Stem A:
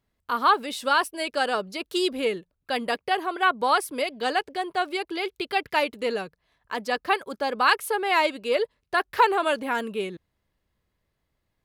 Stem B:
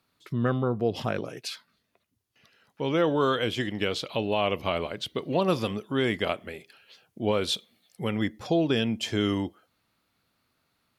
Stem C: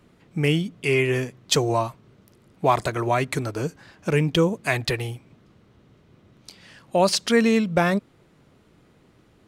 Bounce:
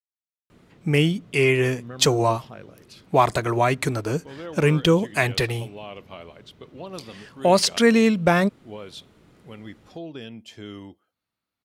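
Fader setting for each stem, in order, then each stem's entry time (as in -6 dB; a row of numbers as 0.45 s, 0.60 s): mute, -12.5 dB, +2.0 dB; mute, 1.45 s, 0.50 s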